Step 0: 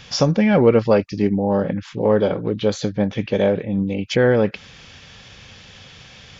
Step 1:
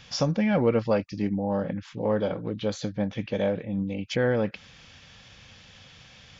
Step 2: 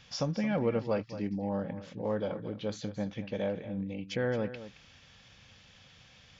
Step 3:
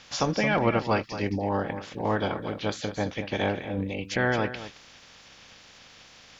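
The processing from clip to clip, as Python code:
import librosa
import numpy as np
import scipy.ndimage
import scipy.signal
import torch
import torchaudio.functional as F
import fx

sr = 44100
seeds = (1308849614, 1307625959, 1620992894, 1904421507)

y1 = fx.peak_eq(x, sr, hz=400.0, db=-8.5, octaves=0.2)
y1 = y1 * 10.0 ** (-7.5 / 20.0)
y2 = y1 + 10.0 ** (-13.0 / 20.0) * np.pad(y1, (int(221 * sr / 1000.0), 0))[:len(y1)]
y2 = y2 * 10.0 ** (-7.0 / 20.0)
y3 = fx.spec_clip(y2, sr, under_db=16)
y3 = y3 * 10.0 ** (6.0 / 20.0)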